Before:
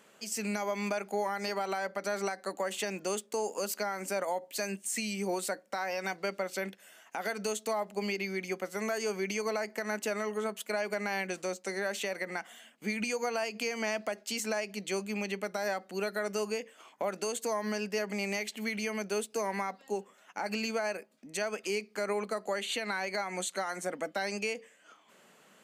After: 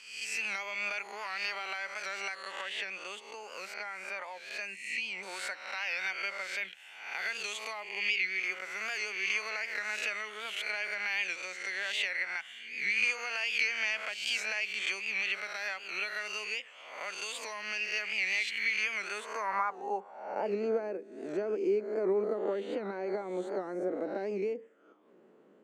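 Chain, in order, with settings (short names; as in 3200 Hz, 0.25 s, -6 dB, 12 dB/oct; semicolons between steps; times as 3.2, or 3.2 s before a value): spectral swells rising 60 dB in 0.78 s; 2.61–5.23 high shelf 3400 Hz -11.5 dB; band-pass sweep 2600 Hz -> 350 Hz, 18.86–20.75; bell 690 Hz -3 dB 0.3 oct; record warp 78 rpm, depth 100 cents; gain +7 dB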